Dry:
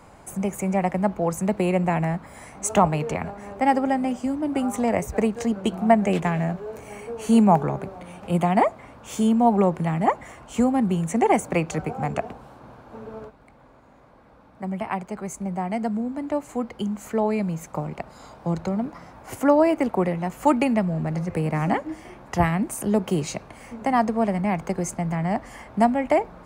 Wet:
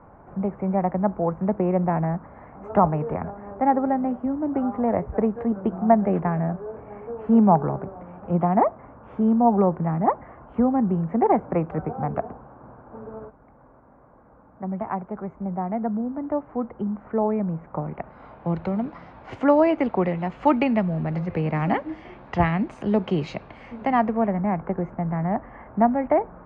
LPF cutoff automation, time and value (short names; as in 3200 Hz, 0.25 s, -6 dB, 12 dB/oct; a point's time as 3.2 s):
LPF 24 dB/oct
17.61 s 1500 Hz
18.84 s 3800 Hz
23.84 s 3800 Hz
24.39 s 1700 Hz